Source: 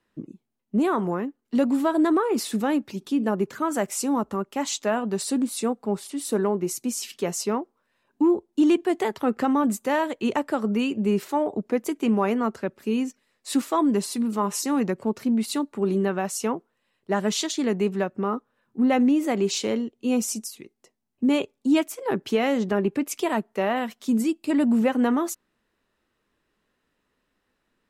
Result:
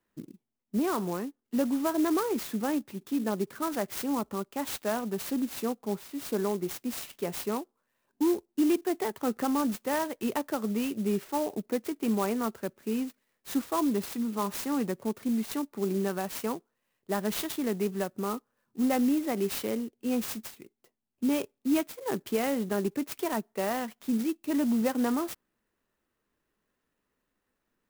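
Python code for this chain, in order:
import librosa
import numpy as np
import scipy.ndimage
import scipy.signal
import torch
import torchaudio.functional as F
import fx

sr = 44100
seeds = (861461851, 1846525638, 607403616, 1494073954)

y = fx.clock_jitter(x, sr, seeds[0], jitter_ms=0.051)
y = y * 10.0 ** (-6.0 / 20.0)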